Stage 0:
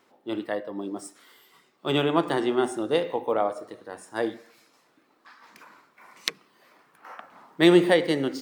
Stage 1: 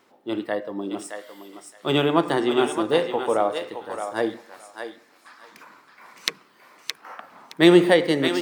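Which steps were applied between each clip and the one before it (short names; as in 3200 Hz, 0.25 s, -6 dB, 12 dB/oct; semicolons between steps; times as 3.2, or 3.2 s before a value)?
thinning echo 0.618 s, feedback 20%, high-pass 820 Hz, level -5 dB; gain +3 dB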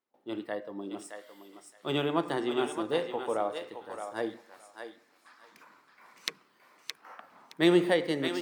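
gate with hold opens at -48 dBFS; gain -9 dB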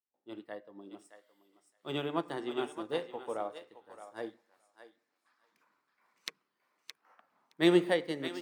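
upward expander 1.5:1, over -50 dBFS; gain -1 dB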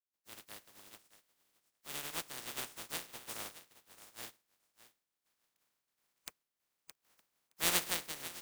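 spectral contrast lowered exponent 0.15; gain -7.5 dB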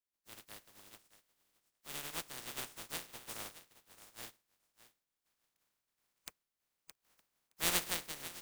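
low shelf 100 Hz +6.5 dB; gain -1.5 dB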